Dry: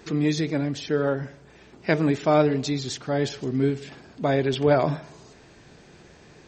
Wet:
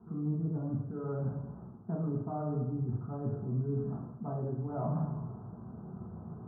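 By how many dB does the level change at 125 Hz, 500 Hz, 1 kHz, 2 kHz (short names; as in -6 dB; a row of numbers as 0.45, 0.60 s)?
-4.5 dB, -16.5 dB, -14.0 dB, under -30 dB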